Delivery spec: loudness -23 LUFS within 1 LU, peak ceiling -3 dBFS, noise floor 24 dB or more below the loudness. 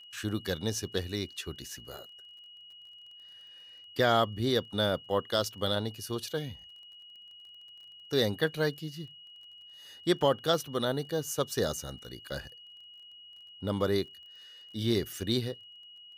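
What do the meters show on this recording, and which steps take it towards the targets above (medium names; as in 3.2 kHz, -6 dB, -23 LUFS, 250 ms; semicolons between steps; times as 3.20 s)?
tick rate 25 per s; steady tone 2.9 kHz; tone level -49 dBFS; loudness -31.5 LUFS; peak level -13.5 dBFS; loudness target -23.0 LUFS
-> de-click; band-stop 2.9 kHz, Q 30; trim +8.5 dB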